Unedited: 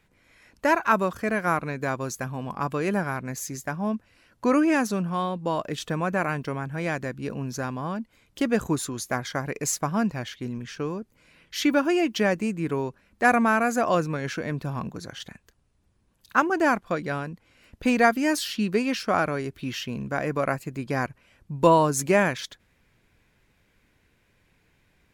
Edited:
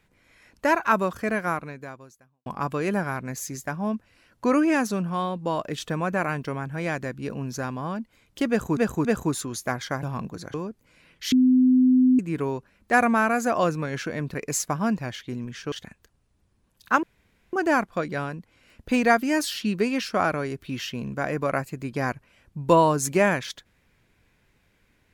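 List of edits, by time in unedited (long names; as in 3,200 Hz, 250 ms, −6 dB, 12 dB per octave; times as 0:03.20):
0:01.35–0:02.46: fade out quadratic
0:08.49–0:08.77: repeat, 3 plays
0:09.47–0:10.85: swap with 0:14.65–0:15.16
0:11.63–0:12.50: beep over 255 Hz −14 dBFS
0:16.47: splice in room tone 0.50 s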